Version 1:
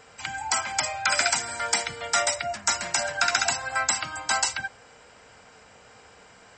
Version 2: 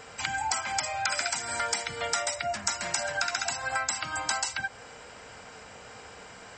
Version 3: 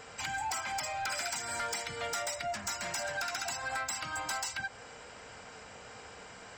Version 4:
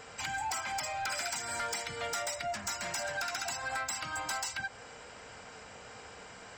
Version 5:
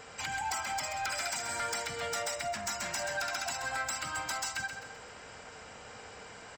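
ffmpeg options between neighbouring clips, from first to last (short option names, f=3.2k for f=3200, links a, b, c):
-af "acompressor=threshold=-32dB:ratio=6,volume=5dB"
-af "asoftclip=type=tanh:threshold=-27dB,volume=-2.5dB"
-af anull
-af "aecho=1:1:131|262|393|524|655:0.398|0.179|0.0806|0.0363|0.0163"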